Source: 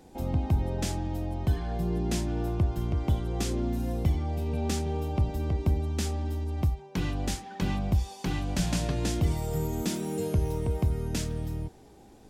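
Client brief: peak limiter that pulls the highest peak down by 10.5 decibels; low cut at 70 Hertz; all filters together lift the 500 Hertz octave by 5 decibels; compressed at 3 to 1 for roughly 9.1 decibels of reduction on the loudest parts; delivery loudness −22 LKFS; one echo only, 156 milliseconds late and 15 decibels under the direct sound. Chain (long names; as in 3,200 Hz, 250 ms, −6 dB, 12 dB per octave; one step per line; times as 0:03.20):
high-pass filter 70 Hz
parametric band 500 Hz +6.5 dB
downward compressor 3 to 1, threshold −34 dBFS
brickwall limiter −31 dBFS
single-tap delay 156 ms −15 dB
level +17.5 dB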